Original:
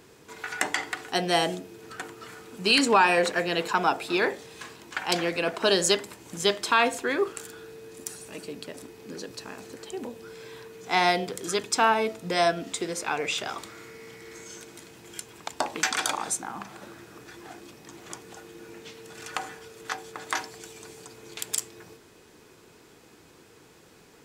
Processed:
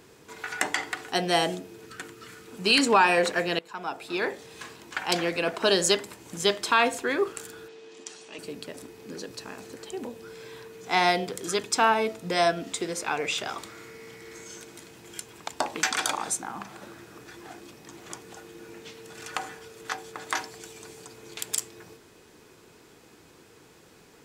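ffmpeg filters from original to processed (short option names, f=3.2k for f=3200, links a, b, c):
-filter_complex "[0:a]asettb=1/sr,asplit=3[a][b][c];[a]atrim=end=1.854[d];[b]atrim=start=1.85:end=2.48,asetpts=PTS-STARTPTS,afade=t=in:d=0.004:c=qsin,afade=t=out:st=0.626:d=0.004:c=qsin,equalizer=f=770:w=1.3:g=-9.5[e];[c]atrim=start=2.476[f];[d][e]acrossfade=d=0.004:c1=hsin:c2=qsin[g];[g][f]acrossfade=d=0.004:c1=qsin:c2=hsin,asettb=1/sr,asplit=3[h][i][j];[h]atrim=end=7.684[k];[i]atrim=start=7.68:end=8.39,asetpts=PTS-STARTPTS,afade=t=in:d=0.004:c=qsin,afade=t=out:st=0.706:d=0.004:c=qsin,highpass=310,equalizer=f=530:t=q:w=4:g=-5,equalizer=f=1.5k:t=q:w=4:g=-4,equalizer=f=3.1k:t=q:w=4:g=6,lowpass=f=6.6k:w=0.5412,lowpass=f=6.6k:w=1.3066[l];[j]atrim=start=8.386[m];[k][l]acrossfade=d=0.004:c1=hsin:c2=qsin[n];[n][m]acrossfade=d=0.004:c1=qsin:c2=hsin,asplit=2[o][p];[o]atrim=end=3.59,asetpts=PTS-STARTPTS,afade=t=out:st=3.586:d=0.004:c=hsin:silence=0.0668344[q];[p]atrim=start=3.59,asetpts=PTS-STARTPTS,afade=t=in:d=1:silence=0.0668344[r];[q][r]concat=n=2:v=0:a=1"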